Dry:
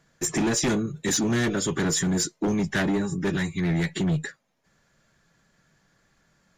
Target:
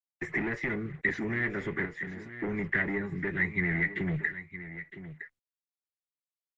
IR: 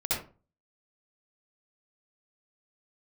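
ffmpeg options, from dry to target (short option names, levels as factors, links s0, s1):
-filter_complex "[0:a]agate=range=0.0316:threshold=0.00141:ratio=16:detection=peak,adynamicequalizer=threshold=0.00794:dfrequency=400:dqfactor=3.5:tfrequency=400:tqfactor=3.5:attack=5:release=100:ratio=0.375:range=2.5:mode=boostabove:tftype=bell,acrossover=split=120|1000[s0][s1][s2];[s0]acontrast=54[s3];[s3][s1][s2]amix=inputs=3:normalize=0,alimiter=limit=0.1:level=0:latency=1:release=460,asettb=1/sr,asplit=3[s4][s5][s6];[s4]atrim=end=1.854[s7];[s5]atrim=start=1.85:end=2.34,asetpts=PTS-STARTPTS,afade=t=in:d=0.004:c=qsin,afade=t=out:st=0.486:d=0.004:c=qsin,acompressor=threshold=0.0141:ratio=3[s8];[s6]atrim=start=2.336[s9];[s7][s8]acrossfade=d=0.004:c1=hsin:c2=qsin[s10];[s10][s9]acrossfade=d=0.004:c1=qsin:c2=hsin,acrusher=bits=7:mix=0:aa=0.5,lowpass=f=2000:t=q:w=11,aecho=1:1:962:0.224,volume=0.562" -ar 48000 -c:a libopus -b:a 32k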